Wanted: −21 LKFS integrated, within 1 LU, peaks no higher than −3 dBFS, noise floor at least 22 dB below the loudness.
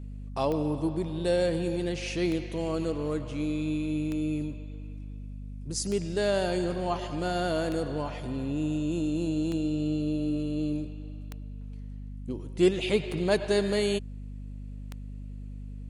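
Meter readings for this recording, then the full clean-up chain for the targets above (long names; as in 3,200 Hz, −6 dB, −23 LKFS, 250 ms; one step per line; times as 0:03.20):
number of clicks 9; mains hum 50 Hz; hum harmonics up to 250 Hz; level of the hum −37 dBFS; integrated loudness −29.5 LKFS; sample peak −12.0 dBFS; target loudness −21.0 LKFS
→ click removal
mains-hum notches 50/100/150/200/250 Hz
level +8.5 dB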